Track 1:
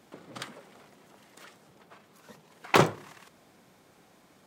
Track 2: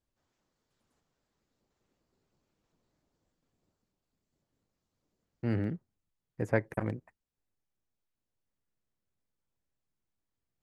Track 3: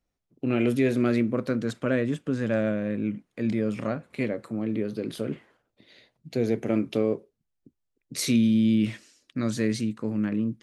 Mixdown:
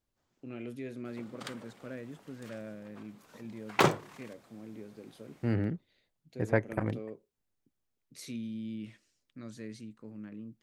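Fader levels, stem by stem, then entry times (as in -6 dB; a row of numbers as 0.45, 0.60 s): -3.5, +1.0, -18.0 dB; 1.05, 0.00, 0.00 s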